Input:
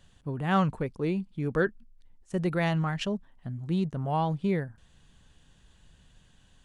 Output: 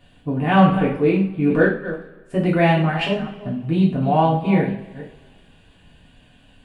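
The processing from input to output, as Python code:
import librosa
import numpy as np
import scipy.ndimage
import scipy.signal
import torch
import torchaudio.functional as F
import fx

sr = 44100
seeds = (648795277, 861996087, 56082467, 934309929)

y = fx.reverse_delay(x, sr, ms=218, wet_db=-12)
y = fx.graphic_eq_15(y, sr, hz=(250, 630, 2500, 6300), db=(8, 9, 8, -12))
y = fx.rev_double_slope(y, sr, seeds[0], early_s=0.4, late_s=1.7, knee_db=-20, drr_db=-5.5)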